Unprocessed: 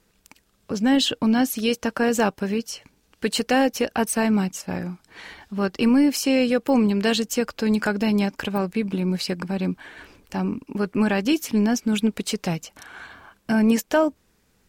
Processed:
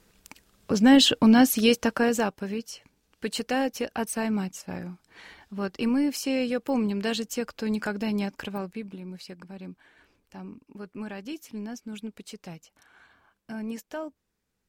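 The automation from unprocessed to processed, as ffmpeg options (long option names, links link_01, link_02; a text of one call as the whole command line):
ffmpeg -i in.wav -af "volume=2.5dB,afade=type=out:start_time=1.64:duration=0.66:silence=0.334965,afade=type=out:start_time=8.41:duration=0.59:silence=0.354813" out.wav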